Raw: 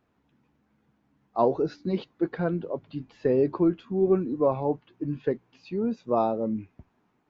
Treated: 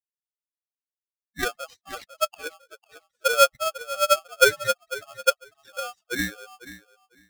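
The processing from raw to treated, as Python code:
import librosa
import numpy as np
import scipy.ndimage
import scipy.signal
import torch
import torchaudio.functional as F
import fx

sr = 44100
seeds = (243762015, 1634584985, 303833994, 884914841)

y = fx.bin_expand(x, sr, power=3.0)
y = fx.echo_feedback(y, sr, ms=499, feedback_pct=16, wet_db=-16.0)
y = fx.filter_sweep_highpass(y, sr, from_hz=150.0, to_hz=440.0, start_s=0.85, end_s=2.51, q=7.5)
y = fx.low_shelf(y, sr, hz=270.0, db=6.0, at=(3.94, 5.98))
y = fx.tremolo_shape(y, sr, shape='saw_down', hz=2.1, depth_pct=45)
y = fx.peak_eq(y, sr, hz=3900.0, db=7.0, octaves=2.3)
y = y * np.sign(np.sin(2.0 * np.pi * 970.0 * np.arange(len(y)) / sr))
y = y * librosa.db_to_amplitude(-2.0)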